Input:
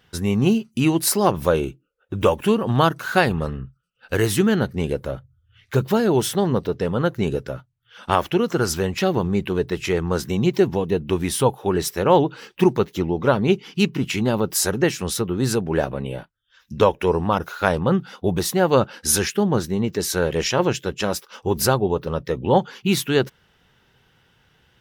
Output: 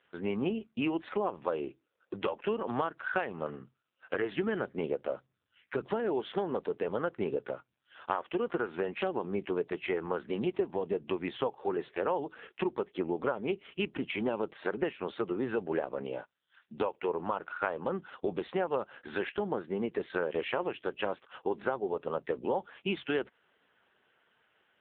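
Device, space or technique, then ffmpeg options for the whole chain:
voicemail: -af "highpass=350,lowpass=2900,acompressor=threshold=0.0631:ratio=8,volume=0.75" -ar 8000 -c:a libopencore_amrnb -b:a 5900

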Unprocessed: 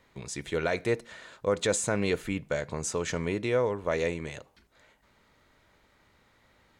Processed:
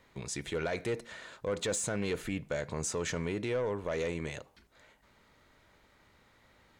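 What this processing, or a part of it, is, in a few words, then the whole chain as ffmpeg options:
soft clipper into limiter: -af "asoftclip=type=tanh:threshold=0.0891,alimiter=level_in=1.26:limit=0.0631:level=0:latency=1:release=41,volume=0.794"

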